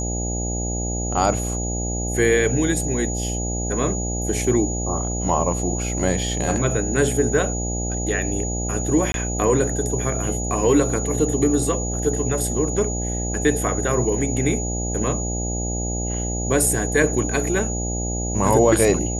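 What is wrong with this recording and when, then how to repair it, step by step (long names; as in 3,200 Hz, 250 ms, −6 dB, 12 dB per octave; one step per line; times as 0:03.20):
mains buzz 60 Hz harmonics 14 −26 dBFS
whistle 6,800 Hz −28 dBFS
0:09.12–0:09.14: drop-out 22 ms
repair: notch filter 6,800 Hz, Q 30
hum removal 60 Hz, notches 14
repair the gap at 0:09.12, 22 ms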